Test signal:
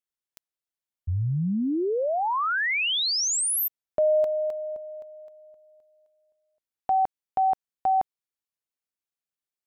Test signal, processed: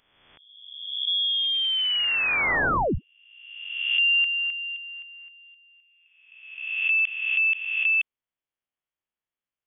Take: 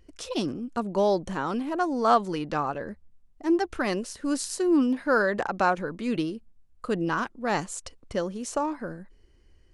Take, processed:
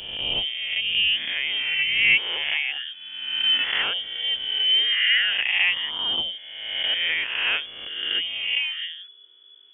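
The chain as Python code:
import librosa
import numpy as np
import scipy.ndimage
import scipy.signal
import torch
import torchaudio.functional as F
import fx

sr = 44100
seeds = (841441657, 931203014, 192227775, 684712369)

y = fx.spec_swells(x, sr, rise_s=1.29)
y = fx.freq_invert(y, sr, carrier_hz=3400)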